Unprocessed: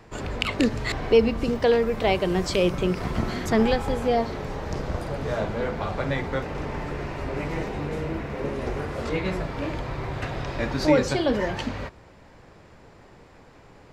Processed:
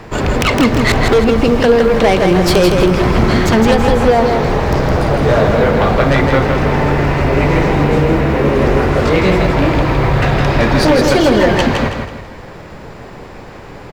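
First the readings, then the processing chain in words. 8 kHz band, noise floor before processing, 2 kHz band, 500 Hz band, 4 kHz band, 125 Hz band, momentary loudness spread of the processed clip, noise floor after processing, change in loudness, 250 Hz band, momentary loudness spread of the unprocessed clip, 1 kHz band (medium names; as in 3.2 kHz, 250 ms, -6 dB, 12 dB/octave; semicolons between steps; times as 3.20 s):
+13.5 dB, -51 dBFS, +14.5 dB, +12.5 dB, +12.5 dB, +16.0 dB, 4 LU, -33 dBFS, +13.5 dB, +13.5 dB, 11 LU, +15.0 dB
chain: tracing distortion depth 0.2 ms; treble shelf 8.1 kHz -9 dB; hum notches 50/100 Hz; compression, threshold -21 dBFS, peak gain reduction 9 dB; companded quantiser 8-bit; sine folder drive 12 dB, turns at -7.5 dBFS; on a send: feedback delay 162 ms, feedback 37%, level -5 dB; on the sum: trim +1 dB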